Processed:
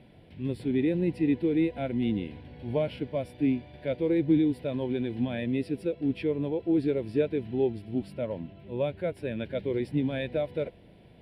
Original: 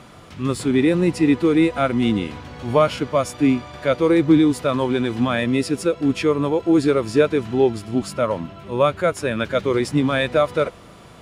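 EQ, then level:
high-shelf EQ 3,000 Hz −11 dB
phaser with its sweep stopped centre 2,900 Hz, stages 4
−8.0 dB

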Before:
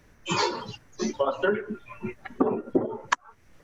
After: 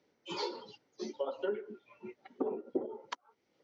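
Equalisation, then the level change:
loudspeaker in its box 470–4,300 Hz, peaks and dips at 650 Hz −7 dB, 1,100 Hz −8 dB, 1,700 Hz −9 dB, 2,600 Hz −7 dB, 3,700 Hz −4 dB
parametric band 1,500 Hz −10.5 dB 1.9 octaves
−2.0 dB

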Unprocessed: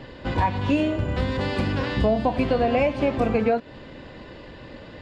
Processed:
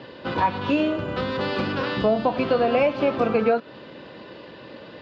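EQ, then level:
dynamic equaliser 1,300 Hz, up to +8 dB, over −53 dBFS, Q 6.5
loudspeaker in its box 190–5,300 Hz, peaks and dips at 260 Hz −4 dB, 750 Hz −3 dB, 2,000 Hz −5 dB
+2.5 dB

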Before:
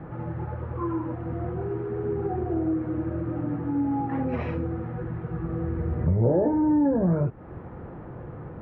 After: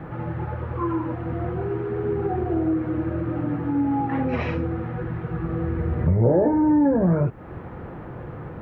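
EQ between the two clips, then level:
high-shelf EQ 2,100 Hz +10.5 dB
+3.0 dB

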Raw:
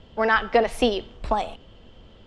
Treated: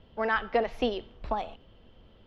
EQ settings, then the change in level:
moving average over 5 samples
−7.0 dB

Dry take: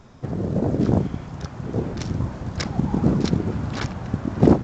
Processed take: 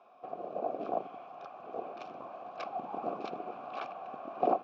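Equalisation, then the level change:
formant filter a
band-pass filter 300–4,800 Hz
+3.5 dB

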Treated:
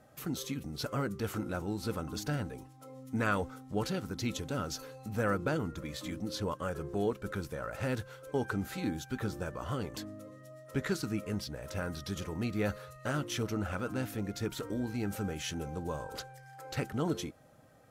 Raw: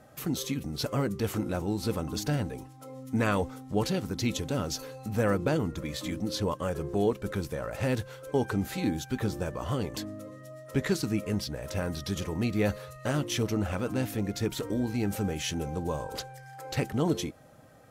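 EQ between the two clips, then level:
dynamic equaliser 1,400 Hz, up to +8 dB, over −55 dBFS, Q 3.7
−5.5 dB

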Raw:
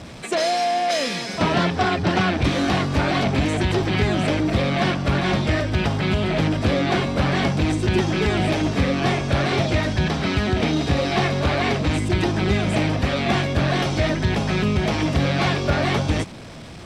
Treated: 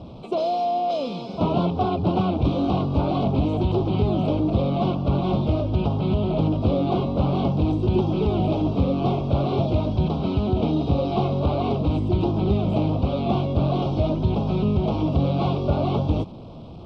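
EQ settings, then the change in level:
Butterworth band-reject 1,800 Hz, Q 0.91
high-frequency loss of the air 380 metres
0.0 dB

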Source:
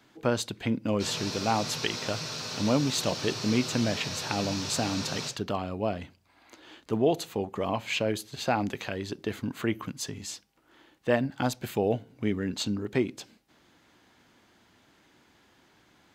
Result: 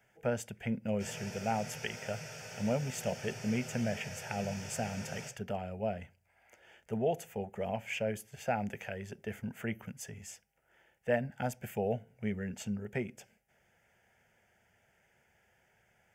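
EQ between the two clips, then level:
dynamic equaliser 230 Hz, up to +8 dB, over −43 dBFS, Q 1.8
phaser with its sweep stopped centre 1,100 Hz, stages 6
−4.5 dB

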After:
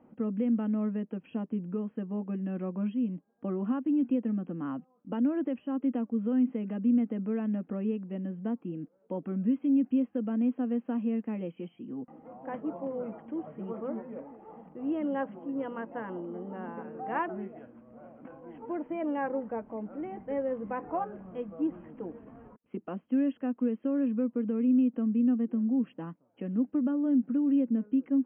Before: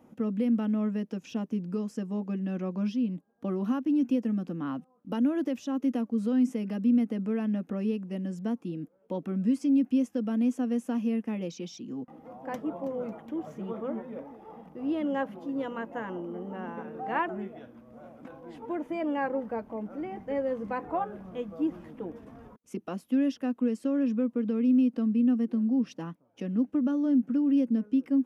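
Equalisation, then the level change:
linear-phase brick-wall low-pass 3,300 Hz
high-frequency loss of the air 480 metres
parametric band 66 Hz −5.5 dB 2 octaves
0.0 dB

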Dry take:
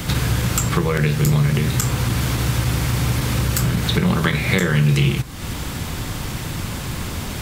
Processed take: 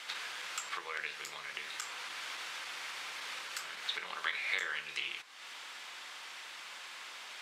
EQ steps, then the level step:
band-pass filter 570–2,500 Hz
first difference
+1.0 dB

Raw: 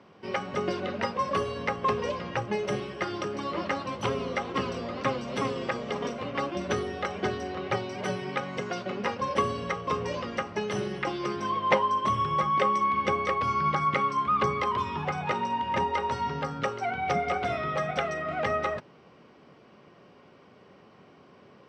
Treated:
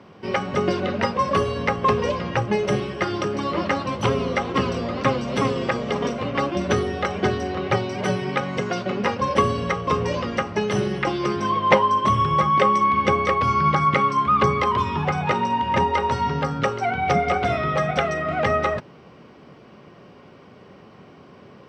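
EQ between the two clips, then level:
low-shelf EQ 190 Hz +6 dB
+6.5 dB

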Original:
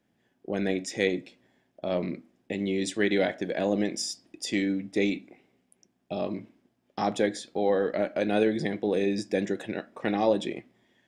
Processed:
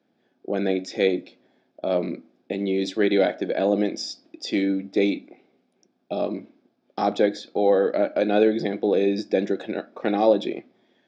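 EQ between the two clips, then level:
loudspeaker in its box 240–4,800 Hz, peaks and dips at 1,000 Hz −6 dB, 1,900 Hz −9 dB, 2,900 Hz −8 dB
+6.5 dB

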